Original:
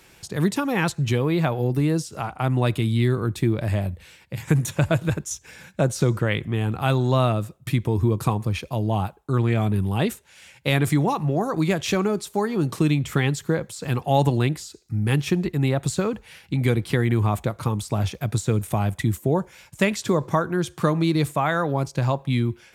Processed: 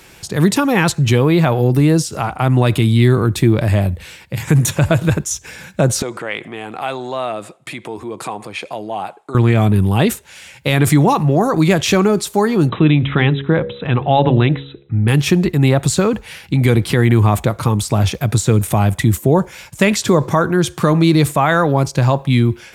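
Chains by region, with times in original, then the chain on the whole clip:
6.02–9.35 compressor 2:1, threshold -31 dBFS + speaker cabinet 360–9900 Hz, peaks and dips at 730 Hz +5 dB, 2200 Hz +4 dB, 5800 Hz -6 dB
12.69–15.08 brick-wall FIR low-pass 4000 Hz + de-hum 68.88 Hz, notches 8
whole clip: transient shaper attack -1 dB, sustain +3 dB; maximiser +10 dB; gain -1 dB

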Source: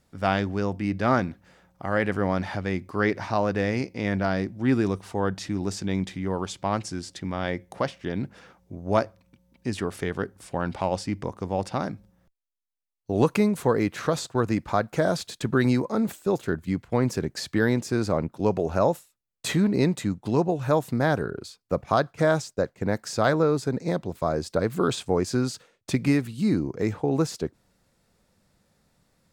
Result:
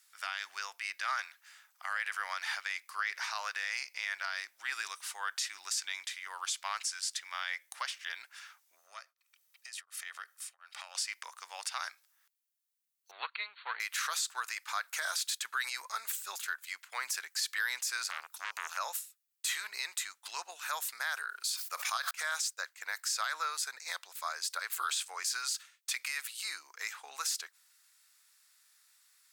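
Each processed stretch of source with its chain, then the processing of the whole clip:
8.79–10.95 compressor 4:1, threshold -32 dBFS + comb 1.6 ms, depth 34% + beating tremolo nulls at 1.4 Hz
13.11–13.8 half-wave gain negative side -7 dB + brick-wall FIR low-pass 4500 Hz + upward expander, over -32 dBFS
18.1–18.77 high shelf 4500 Hz +8.5 dB + core saturation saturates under 1600 Hz
21.29–22.11 high shelf 3900 Hz +6.5 dB + sustainer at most 68 dB/s
whole clip: HPF 1300 Hz 24 dB/oct; high shelf 6100 Hz +11 dB; limiter -24.5 dBFS; gain +1.5 dB

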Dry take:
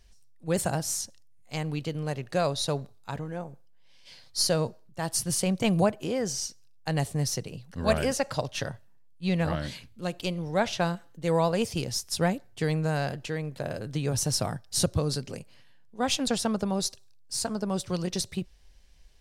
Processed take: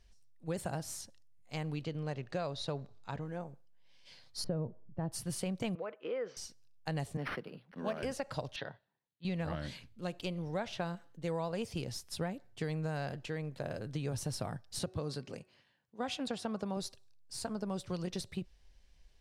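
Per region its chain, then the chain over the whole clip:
1.83–3.22 LPF 6700 Hz + upward compressor, threshold -41 dBFS
4.44–5.12 LPF 1900 Hz + tilt shelf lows +8.5 dB, about 650 Hz
5.75–6.37 gate -35 dBFS, range -6 dB + compressor 5:1, threshold -27 dBFS + speaker cabinet 430–3100 Hz, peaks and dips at 480 Hz +9 dB, 740 Hz -7 dB, 1300 Hz +7 dB, 2100 Hz +4 dB
7.17–8.03 HPF 180 Hz 24 dB/oct + decimation joined by straight lines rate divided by 6×
8.56–9.25 upward compressor, threshold -53 dBFS + speaker cabinet 220–4000 Hz, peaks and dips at 240 Hz -7 dB, 350 Hz -3 dB, 550 Hz -4 dB, 1200 Hz -4 dB, 2600 Hz -4 dB, 3800 Hz +5 dB
14.79–16.77 HPF 150 Hz 6 dB/oct + high shelf 11000 Hz -10.5 dB + de-hum 370.8 Hz, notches 7
whole clip: high shelf 8000 Hz -8 dB; compressor, threshold -27 dBFS; dynamic EQ 6100 Hz, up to -6 dB, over -48 dBFS, Q 1.6; gain -5.5 dB

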